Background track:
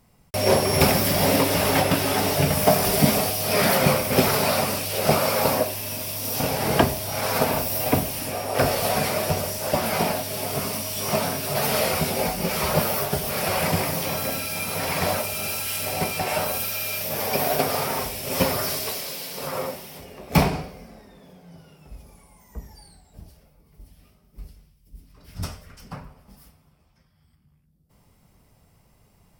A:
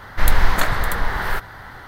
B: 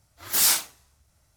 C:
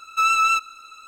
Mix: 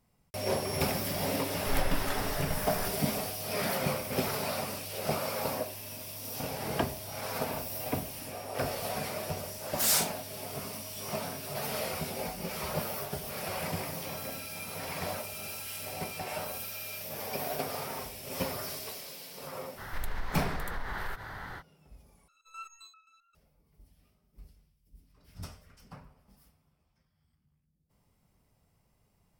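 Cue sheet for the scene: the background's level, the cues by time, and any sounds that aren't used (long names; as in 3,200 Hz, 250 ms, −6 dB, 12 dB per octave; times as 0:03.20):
background track −12 dB
0:01.49: mix in A −17 dB
0:09.46: mix in B −6.5 dB
0:19.76: mix in A −4 dB, fades 0.05 s + downward compressor 3 to 1, threshold −31 dBFS
0:22.28: overwrite with C −10.5 dB + step-sequenced resonator 7.6 Hz 140–1,300 Hz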